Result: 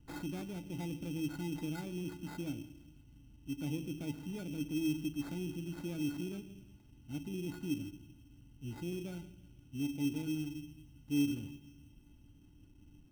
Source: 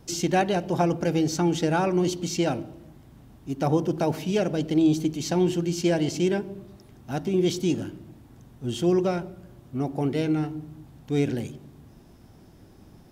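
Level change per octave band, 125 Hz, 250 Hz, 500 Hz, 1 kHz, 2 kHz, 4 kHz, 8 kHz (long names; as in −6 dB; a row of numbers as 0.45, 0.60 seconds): −13.5, −12.0, −21.5, −24.5, −14.0, −14.0, −16.0 decibels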